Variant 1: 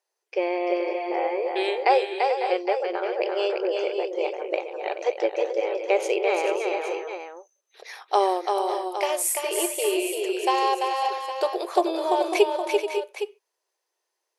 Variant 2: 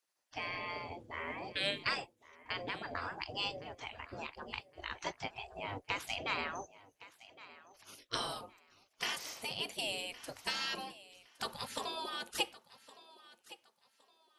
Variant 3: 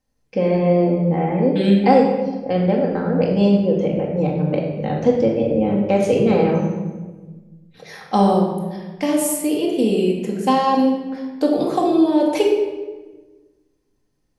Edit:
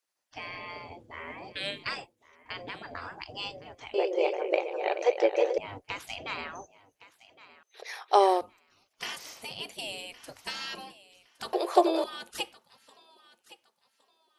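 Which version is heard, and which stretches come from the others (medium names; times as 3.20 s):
2
3.94–5.58 s: from 1
7.63–8.41 s: from 1
11.53–12.04 s: from 1
not used: 3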